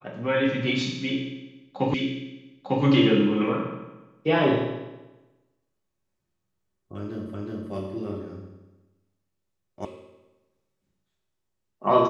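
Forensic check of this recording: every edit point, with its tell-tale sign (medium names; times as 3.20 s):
1.94 s: repeat of the last 0.9 s
7.34 s: repeat of the last 0.37 s
9.85 s: sound stops dead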